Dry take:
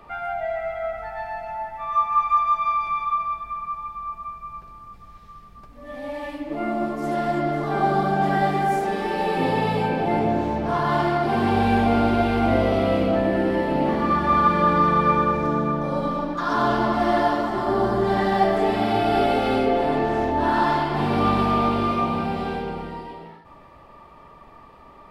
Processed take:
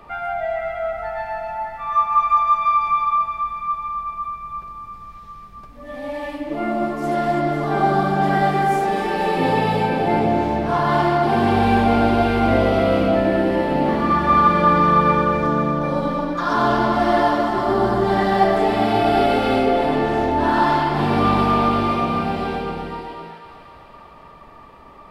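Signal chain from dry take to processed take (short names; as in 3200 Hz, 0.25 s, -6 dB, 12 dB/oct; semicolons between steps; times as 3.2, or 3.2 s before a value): thinning echo 0.252 s, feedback 70%, level -11 dB; gain +3 dB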